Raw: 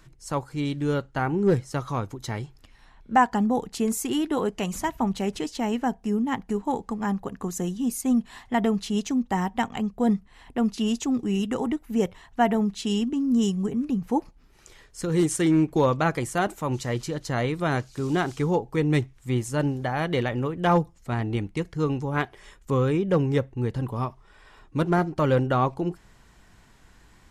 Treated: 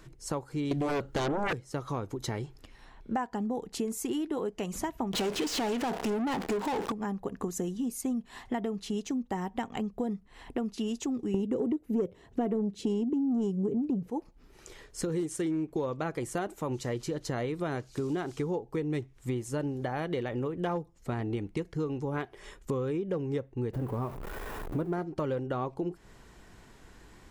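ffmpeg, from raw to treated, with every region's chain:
-filter_complex "[0:a]asettb=1/sr,asplit=3[a][b][c];[a]atrim=end=0.714[d];[b]atrim=start=0.71:end=1.53,asetpts=PTS-STARTPTS,afade=t=in:d=0.004:c=qsin,afade=t=out:st=0.816:d=0.004:c=qsin,lowpass=f=1.6k:p=1,aemphasis=mode=production:type=75fm,aeval=exprs='0.251*sin(PI/2*5.62*val(0)/0.251)':c=same[e];[c]atrim=start=1.526[f];[d][e]acrossfade=d=0.004:c1=hsin:c2=qsin[g];[g][f]acrossfade=d=0.004:c1=qsin:c2=hsin,asettb=1/sr,asplit=3[h][i][j];[h]atrim=end=5.134[k];[i]atrim=start=5.13:end=6.92,asetpts=PTS-STARTPTS,afade=t=in:d=0.004:c=qsin,afade=t=out:st=1.786:d=0.004:c=qsin,aeval=exprs='val(0)+0.5*0.0106*sgn(val(0))':c=same,asplit=2[l][m];[m]highpass=f=720:p=1,volume=31dB,asoftclip=type=tanh:threshold=-13.5dB[n];[l][n]amix=inputs=2:normalize=0,lowpass=f=5.3k:p=1,volume=-6dB[o];[j]atrim=start=6.916[p];[k][o]acrossfade=d=0.004:c1=hsin:c2=qsin[q];[q][p]acrossfade=d=0.004:c1=qsin:c2=hsin,asettb=1/sr,asplit=3[r][s][t];[r]atrim=end=11.344[u];[s]atrim=start=11.34:end=14.1,asetpts=PTS-STARTPTS,afade=t=in:d=0.004:c=qsin,afade=t=out:st=2.756:d=0.004:c=qsin,highpass=63,lowshelf=f=670:t=q:w=1.5:g=9.5,acontrast=55[v];[t]atrim=start=14.096[w];[u][v]acrossfade=d=0.004:c1=hsin:c2=qsin[x];[x][w]acrossfade=d=0.004:c1=qsin:c2=hsin,asettb=1/sr,asplit=3[y][z][aa];[y]atrim=end=23.734[ab];[z]atrim=start=23.73:end=24.93,asetpts=PTS-STARTPTS,afade=t=in:d=0.004:c=qsin,afade=t=out:st=1.196:d=0.004:c=qsin,aeval=exprs='val(0)+0.5*0.0224*sgn(val(0))':c=same,equalizer=f=4.9k:t=o:w=2.3:g=-12.5[ac];[aa]atrim=start=24.926[ad];[ab][ac]acrossfade=d=0.004:c1=hsin:c2=qsin[ae];[ae][ad]acrossfade=d=0.004:c1=qsin:c2=hsin,equalizer=f=400:t=o:w=1.2:g=6.5,acompressor=threshold=-30dB:ratio=6"

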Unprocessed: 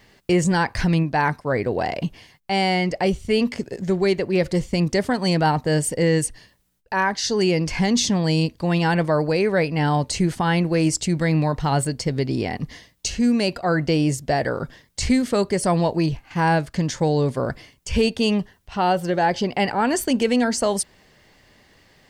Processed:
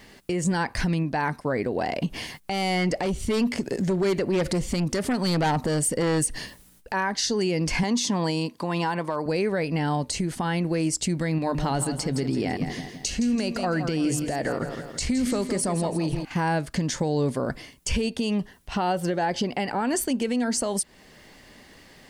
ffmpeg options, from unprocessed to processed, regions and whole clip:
-filter_complex "[0:a]asettb=1/sr,asplit=3[a][b][c];[a]atrim=end=2.064[d];[b]atrim=start=2.06:end=6.94,asetpts=PTS-STARTPTS,afade=t=in:d=0.004:c=qsin,afade=t=out:st=4.876:d=0.004:c=qsin,aeval=exprs='0.398*sin(PI/2*2*val(0)/0.398)':c=same,acompressor=threshold=-30dB:ratio=3:attack=3.2:release=140:knee=1:detection=peak[e];[c]atrim=start=6.936[f];[d][e]acrossfade=d=0.004:c1=hsin:c2=qsin[g];[g][f]acrossfade=d=0.004:c1=qsin:c2=hsin,asettb=1/sr,asplit=3[h][i][j];[h]atrim=end=7.834[k];[i]atrim=start=7.83:end=9.26,asetpts=PTS-STARTPTS,afade=t=in:d=0.004:c=qsin,afade=t=out:st=1.426:d=0.004:c=qsin,highpass=180,equalizer=f=1k:t=o:w=0.42:g=10.5,asoftclip=type=hard:threshold=-7dB[l];[j]atrim=start=9.256[m];[k][l]acrossfade=d=0.004:c1=hsin:c2=qsin[n];[n][m]acrossfade=d=0.004:c1=qsin:c2=hsin,asettb=1/sr,asplit=3[o][p][q];[o]atrim=end=11.384[r];[p]atrim=start=11.38:end=16.25,asetpts=PTS-STARTPTS,afade=t=in:d=0.004:c=qsin,afade=t=out:st=4.866:d=0.004:c=qsin,bandreject=f=50:t=h:w=6,bandreject=f=100:t=h:w=6,bandreject=f=150:t=h:w=6,acompressor=threshold=-21dB:ratio=3:attack=3.2:release=140:knee=1:detection=peak,aecho=1:1:166|332|498|664|830:0.316|0.136|0.0585|0.0251|0.0108,atrim=end_sample=214767[s];[q]atrim=start=16.246[t];[r][s]acrossfade=d=0.004:c1=hsin:c2=qsin[u];[u][t]acrossfade=d=0.004:c1=qsin:c2=hsin,equalizer=f=100:t=o:w=0.67:g=-5,equalizer=f=250:t=o:w=0.67:g=4,equalizer=f=10k:t=o:w=0.67:g=5,acompressor=threshold=-21dB:ratio=6,alimiter=limit=-20dB:level=0:latency=1:release=372,volume=4dB"

